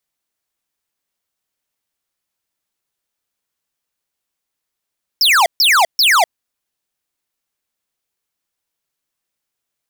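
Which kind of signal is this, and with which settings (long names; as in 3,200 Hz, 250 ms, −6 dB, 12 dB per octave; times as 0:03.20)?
repeated falling chirps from 5,600 Hz, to 630 Hz, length 0.25 s square, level −11 dB, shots 3, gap 0.14 s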